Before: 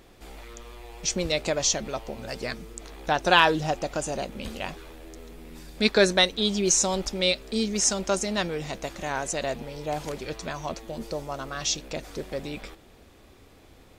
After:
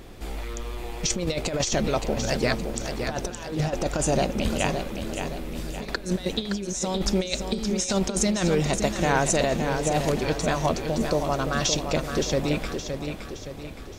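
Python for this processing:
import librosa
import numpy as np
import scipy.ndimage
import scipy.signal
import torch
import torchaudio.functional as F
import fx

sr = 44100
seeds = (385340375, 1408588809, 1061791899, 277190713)

p1 = fx.low_shelf(x, sr, hz=310.0, db=6.0)
p2 = fx.over_compress(p1, sr, threshold_db=-27.0, ratio=-0.5)
p3 = p2 + fx.echo_feedback(p2, sr, ms=568, feedback_pct=46, wet_db=-7, dry=0)
y = p3 * 10.0 ** (3.0 / 20.0)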